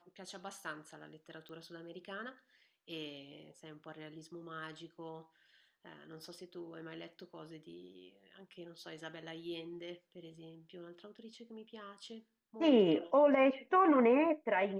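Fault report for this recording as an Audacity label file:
1.490000	1.490000	pop -39 dBFS

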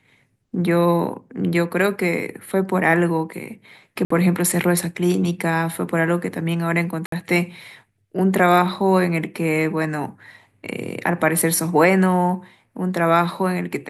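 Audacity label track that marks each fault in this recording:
4.050000	4.100000	dropout 54 ms
7.060000	7.120000	dropout 63 ms

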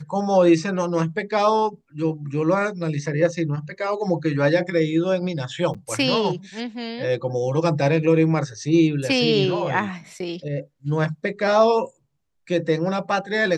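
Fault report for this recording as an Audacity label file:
5.740000	5.750000	dropout 6.3 ms

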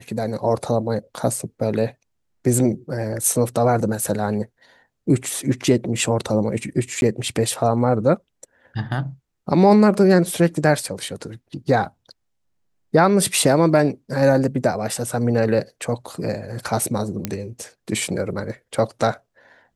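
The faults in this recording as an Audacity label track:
7.010000	7.020000	dropout 11 ms
17.250000	17.250000	pop -8 dBFS

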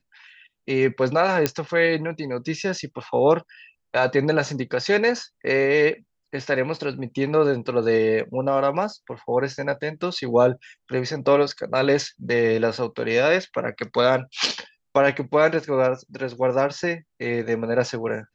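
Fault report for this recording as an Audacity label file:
1.460000	1.460000	pop -4 dBFS

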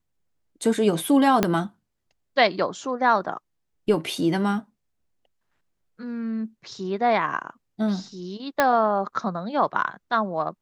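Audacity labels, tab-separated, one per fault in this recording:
1.430000	1.430000	pop -5 dBFS
8.600000	8.600000	pop -5 dBFS

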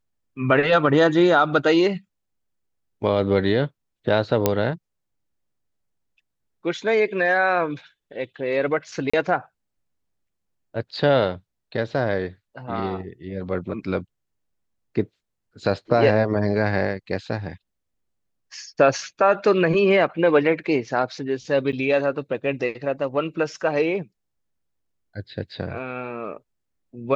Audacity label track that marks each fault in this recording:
4.460000	4.460000	pop -3 dBFS
9.100000	9.130000	dropout 35 ms
21.720000	21.730000	dropout 8.3 ms

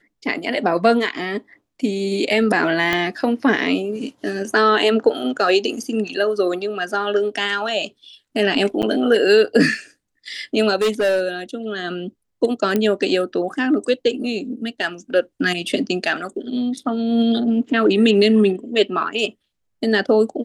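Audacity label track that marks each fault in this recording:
2.930000	2.930000	pop -6 dBFS
8.820000	8.830000	dropout 8.1 ms
10.810000	11.290000	clipped -14.5 dBFS
12.760000	12.760000	pop -7 dBFS

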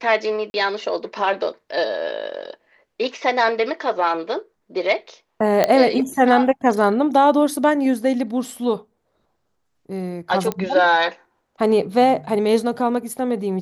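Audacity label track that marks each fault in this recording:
0.500000	0.540000	dropout 41 ms
5.640000	5.640000	pop -3 dBFS
10.520000	10.520000	pop -10 dBFS

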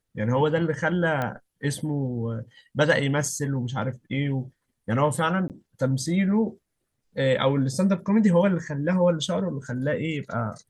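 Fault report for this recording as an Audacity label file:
1.220000	1.220000	pop -15 dBFS
5.480000	5.500000	dropout 18 ms

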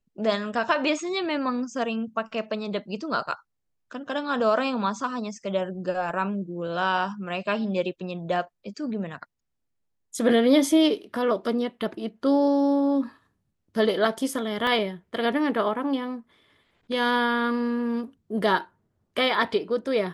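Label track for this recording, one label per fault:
14.670000	14.670000	dropout 2.1 ms

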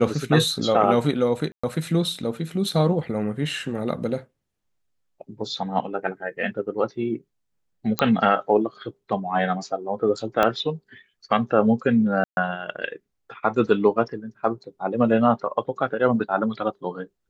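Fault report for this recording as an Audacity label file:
1.520000	1.640000	dropout 115 ms
7.990000	7.990000	pop -6 dBFS
10.430000	10.430000	pop -7 dBFS
12.240000	12.370000	dropout 131 ms

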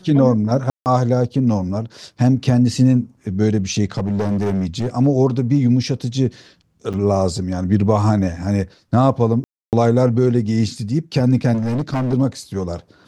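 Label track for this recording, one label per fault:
0.700000	0.860000	dropout 159 ms
3.970000	4.880000	clipped -15.5 dBFS
6.930000	6.940000	dropout 7.4 ms
9.440000	9.730000	dropout 288 ms
11.530000	12.140000	clipped -17 dBFS

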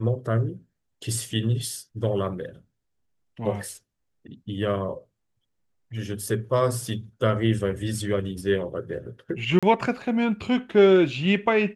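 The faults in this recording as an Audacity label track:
9.590000	9.630000	dropout 36 ms

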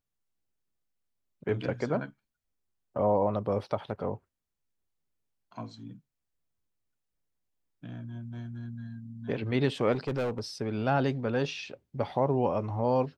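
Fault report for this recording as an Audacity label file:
9.920000	10.400000	clipped -26 dBFS

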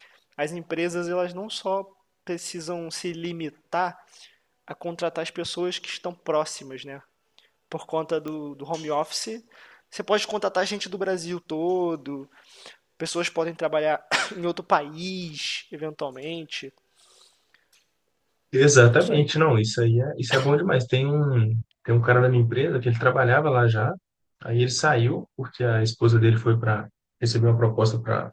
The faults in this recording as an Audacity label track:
8.280000	8.280000	pop -21 dBFS

